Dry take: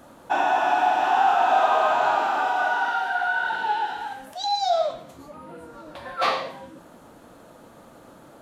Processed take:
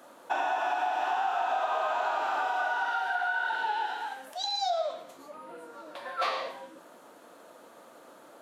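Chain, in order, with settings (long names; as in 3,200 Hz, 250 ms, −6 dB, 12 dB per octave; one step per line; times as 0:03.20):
high-pass filter 380 Hz 12 dB per octave
notch filter 820 Hz, Q 20
downward compressor 6 to 1, threshold −24 dBFS, peak gain reduction 8.5 dB
level −2 dB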